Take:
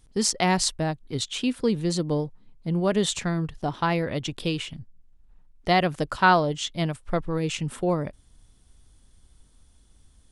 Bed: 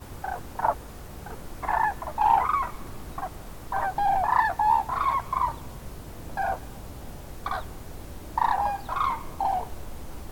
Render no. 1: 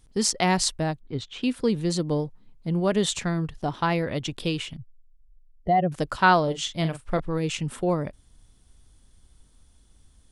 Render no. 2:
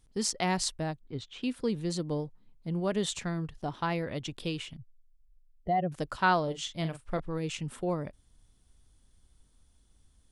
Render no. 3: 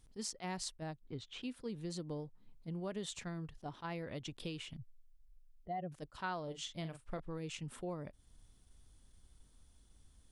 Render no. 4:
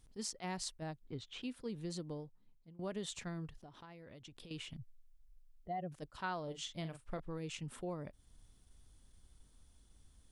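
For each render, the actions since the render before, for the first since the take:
1–1.43 tape spacing loss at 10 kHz 23 dB; 4.77–5.92 spectral contrast raised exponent 2.1; 6.43–7.2 doubler 43 ms -9.5 dB
gain -7 dB
compressor 2.5:1, threshold -44 dBFS, peak gain reduction 15.5 dB; attack slew limiter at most 430 dB/s
1.95–2.79 fade out, to -21 dB; 3.63–4.51 compressor 16:1, threshold -50 dBFS

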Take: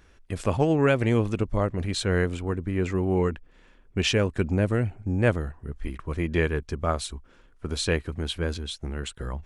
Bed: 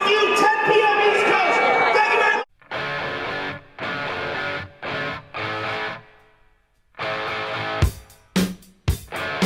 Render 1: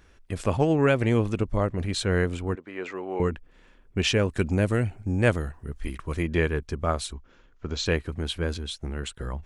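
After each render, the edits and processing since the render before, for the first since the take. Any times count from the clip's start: 2.55–3.2 BPF 510–4700 Hz; 4.28–6.23 high shelf 3000 Hz +8 dB; 7.13–7.86 elliptic low-pass 6900 Hz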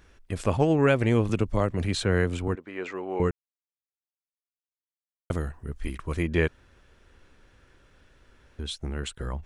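1.29–2.48 three-band squash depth 40%; 3.31–5.3 mute; 6.48–8.59 room tone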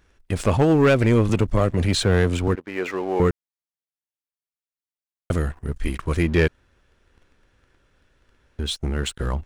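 sample leveller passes 2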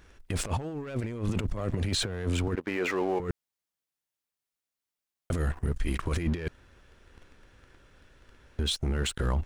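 negative-ratio compressor -24 dBFS, ratio -0.5; limiter -20 dBFS, peak gain reduction 9.5 dB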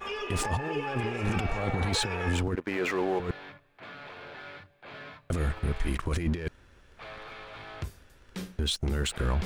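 add bed -18 dB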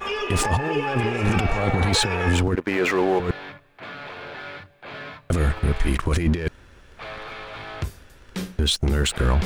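gain +8 dB

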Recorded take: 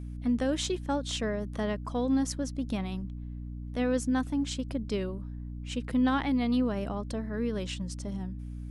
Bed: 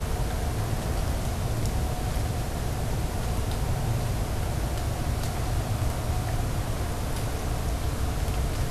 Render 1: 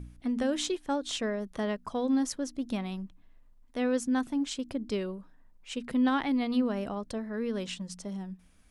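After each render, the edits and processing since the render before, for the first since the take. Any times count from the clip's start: de-hum 60 Hz, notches 5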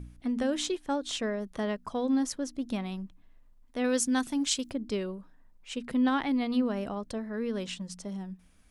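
3.84–4.71 high shelf 2500 Hz +12 dB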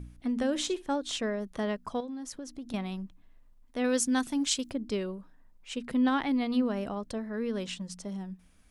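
0.49–0.96 flutter echo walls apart 10.6 m, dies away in 0.21 s; 2–2.74 compressor 8:1, threshold -36 dBFS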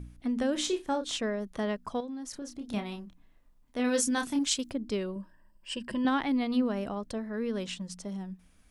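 0.52–1.17 doubler 30 ms -7.5 dB; 2.3–4.39 doubler 29 ms -5.5 dB; 5.15–6.05 ripple EQ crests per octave 1.3, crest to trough 13 dB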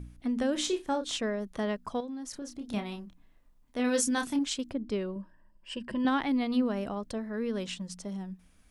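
4.36–6 high shelf 3800 Hz -9 dB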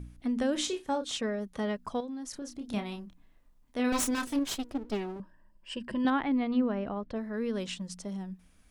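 0.65–1.79 notch comb 340 Hz; 3.92–5.2 minimum comb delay 3.1 ms; 6.1–7.16 LPF 2500 Hz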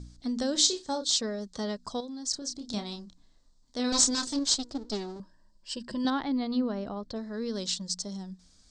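elliptic low-pass 8000 Hz, stop band 50 dB; resonant high shelf 3400 Hz +9.5 dB, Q 3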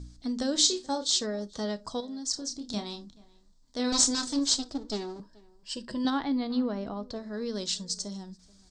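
outdoor echo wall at 74 m, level -24 dB; non-linear reverb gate 90 ms falling, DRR 12 dB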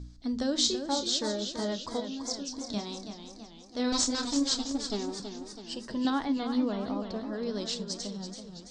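air absorption 76 m; warbling echo 0.329 s, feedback 56%, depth 101 cents, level -8.5 dB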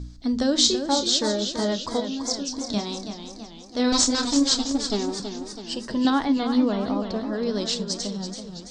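gain +7.5 dB

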